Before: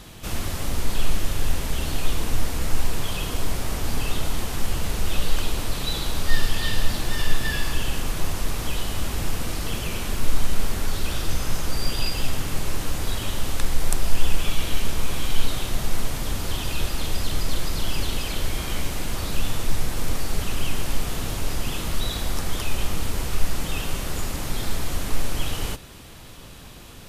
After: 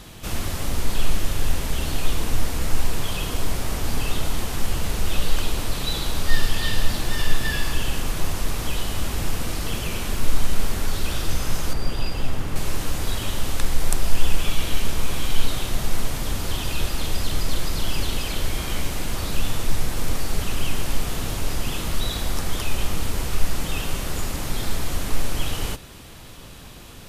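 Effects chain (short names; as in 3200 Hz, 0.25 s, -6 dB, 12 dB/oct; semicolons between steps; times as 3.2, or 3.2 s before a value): 11.73–12.56 high shelf 2600 Hz -10 dB; gain +1 dB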